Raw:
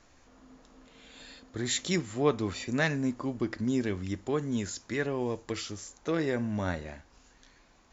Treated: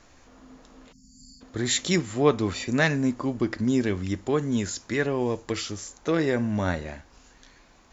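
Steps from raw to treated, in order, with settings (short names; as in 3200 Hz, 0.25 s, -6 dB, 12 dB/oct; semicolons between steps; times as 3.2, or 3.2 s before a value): spectral delete 0.92–1.41, 260–4400 Hz; gain +5.5 dB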